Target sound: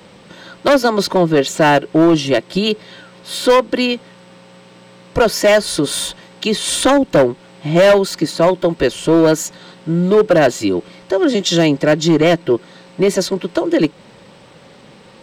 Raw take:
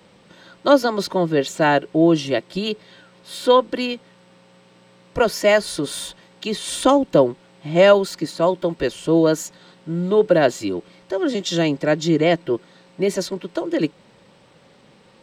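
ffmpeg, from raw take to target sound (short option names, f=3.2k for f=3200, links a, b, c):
-filter_complex "[0:a]asplit=2[a][b];[b]acompressor=threshold=-23dB:ratio=6,volume=-2dB[c];[a][c]amix=inputs=2:normalize=0,asoftclip=type=hard:threshold=-10dB,volume=4dB"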